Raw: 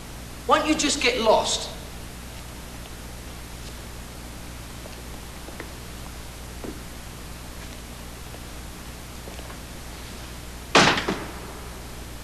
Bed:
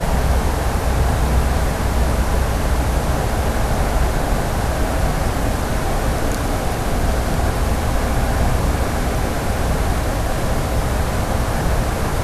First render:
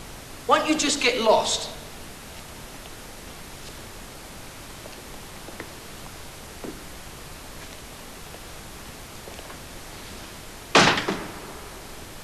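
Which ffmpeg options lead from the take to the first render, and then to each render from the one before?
-af "bandreject=f=60:t=h:w=4,bandreject=f=120:t=h:w=4,bandreject=f=180:t=h:w=4,bandreject=f=240:t=h:w=4,bandreject=f=300:t=h:w=4"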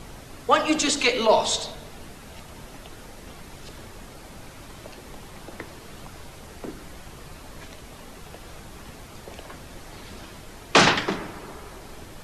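-af "afftdn=nr=6:nf=-42"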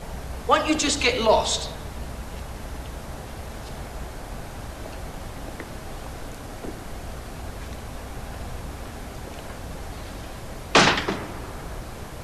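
-filter_complex "[1:a]volume=0.126[s0];[0:a][s0]amix=inputs=2:normalize=0"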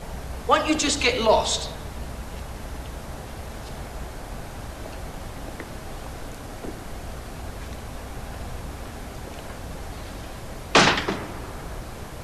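-af anull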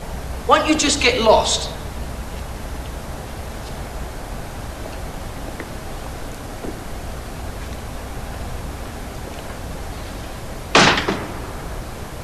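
-af "volume=1.88,alimiter=limit=0.891:level=0:latency=1"

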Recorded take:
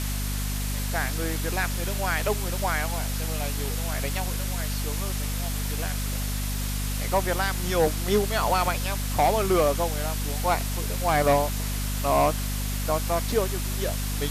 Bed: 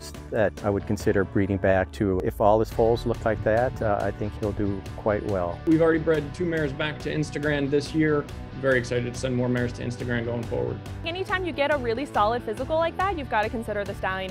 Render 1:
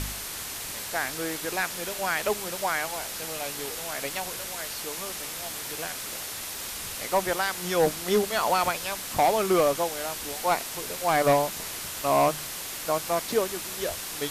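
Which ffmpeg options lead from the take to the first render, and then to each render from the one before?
-af "bandreject=f=50:t=h:w=4,bandreject=f=100:t=h:w=4,bandreject=f=150:t=h:w=4,bandreject=f=200:t=h:w=4,bandreject=f=250:t=h:w=4"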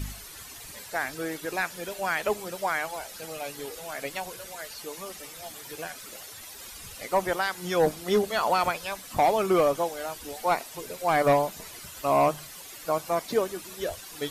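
-af "afftdn=nr=12:nf=-36"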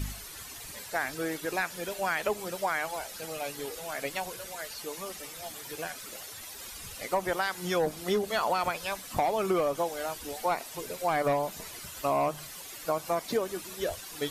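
-af "acompressor=threshold=0.0631:ratio=6"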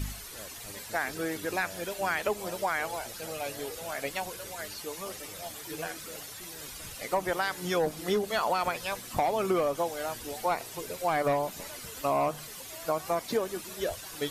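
-filter_complex "[1:a]volume=0.0501[s0];[0:a][s0]amix=inputs=2:normalize=0"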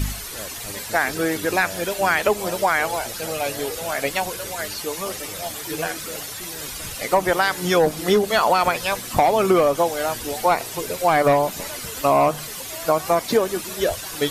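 -af "volume=3.35"

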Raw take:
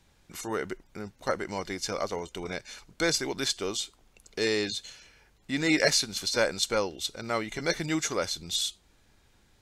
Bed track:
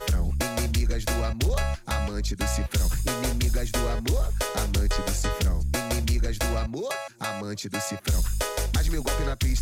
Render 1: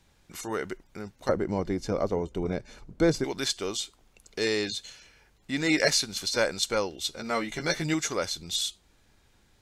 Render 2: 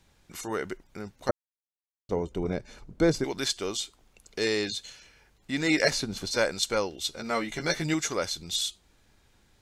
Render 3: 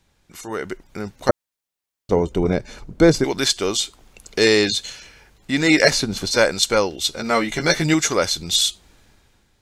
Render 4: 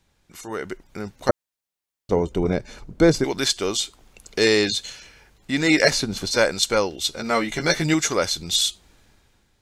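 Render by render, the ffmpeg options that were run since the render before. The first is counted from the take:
-filter_complex "[0:a]asettb=1/sr,asplit=3[s0][s1][s2];[s0]atrim=end=1.294[s3];[s1]atrim=start=1.29:end=3.24,asetpts=PTS-STARTPTS,afade=t=in:d=0.004:c=qsin,afade=t=out:st=1.946:d=0.004:c=qsin,tiltshelf=f=910:g=10[s4];[s2]atrim=start=3.236[s5];[s3][s4]acrossfade=d=0.004:c1=hsin:c2=qsin[s6];[s6][s5]acrossfade=d=0.004:c1=qsin:c2=hsin,asettb=1/sr,asplit=3[s7][s8][s9];[s7]atrim=end=7.044[s10];[s8]atrim=start=7.04:end=7.94,asetpts=PTS-STARTPTS,afade=t=in:d=0.004:c=qsin,afade=t=out:st=0.896:d=0.004:c=qsin,asplit=2[s11][s12];[s12]adelay=13,volume=0.631[s13];[s11][s13]amix=inputs=2:normalize=0,atrim=end_sample=39690[s14];[s9]atrim=start=7.936[s15];[s10][s14]acrossfade=d=0.004:c1=hsin:c2=qsin[s16];[s16][s15]acrossfade=d=0.004:c1=qsin:c2=hsin"
-filter_complex "[0:a]asettb=1/sr,asplit=3[s0][s1][s2];[s0]atrim=end=5.914[s3];[s1]atrim=start=5.91:end=6.31,asetpts=PTS-STARTPTS,afade=t=in:d=0.004:c=qsin,afade=t=out:st=0.396:d=0.004:c=qsin,tiltshelf=f=1400:g=7.5[s4];[s2]atrim=start=6.306[s5];[s3][s4]acrossfade=d=0.004:c1=hsin:c2=qsin[s6];[s6][s5]acrossfade=d=0.004:c1=qsin:c2=hsin,asplit=3[s7][s8][s9];[s7]atrim=end=1.31,asetpts=PTS-STARTPTS,afade=t=out:st=1.306:d=0.004:c=hsin[s10];[s8]atrim=start=1.31:end=2.09,asetpts=PTS-STARTPTS,volume=0[s11];[s9]atrim=start=2.09,asetpts=PTS-STARTPTS,afade=t=in:d=0.004:c=hsin[s12];[s10][s11][s12]concat=n=3:v=0:a=1"
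-af "dynaudnorm=f=210:g=7:m=4.73"
-af "volume=0.75"

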